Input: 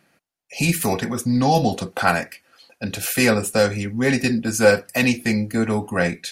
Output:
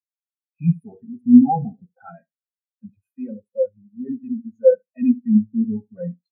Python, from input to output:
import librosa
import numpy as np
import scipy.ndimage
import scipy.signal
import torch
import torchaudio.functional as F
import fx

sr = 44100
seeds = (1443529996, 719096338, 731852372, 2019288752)

p1 = fx.leveller(x, sr, passes=3)
p2 = fx.echo_feedback(p1, sr, ms=74, feedback_pct=31, wet_db=-10)
p3 = 10.0 ** (-15.0 / 20.0) * np.tanh(p2 / 10.0 ** (-15.0 / 20.0))
p4 = p2 + F.gain(torch.from_numpy(p3), -4.0).numpy()
p5 = fx.power_curve(p4, sr, exponent=1.4, at=(3.09, 4.73))
p6 = fx.spectral_expand(p5, sr, expansion=4.0)
y = F.gain(torch.from_numpy(p6), -1.0).numpy()